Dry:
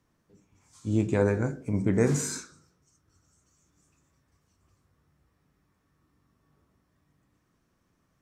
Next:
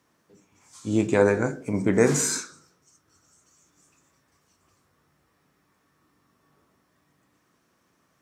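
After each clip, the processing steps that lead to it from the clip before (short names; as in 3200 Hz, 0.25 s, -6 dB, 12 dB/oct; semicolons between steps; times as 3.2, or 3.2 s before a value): HPF 360 Hz 6 dB/oct; gain +8 dB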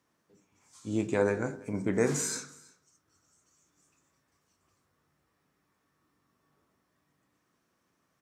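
echo 0.329 s -23 dB; gain -7.5 dB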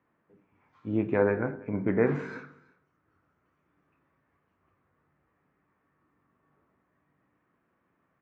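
LPF 2300 Hz 24 dB/oct; gain +2.5 dB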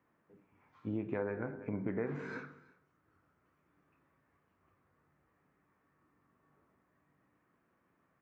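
compressor 4:1, threshold -33 dBFS, peak gain reduction 12.5 dB; gain -1.5 dB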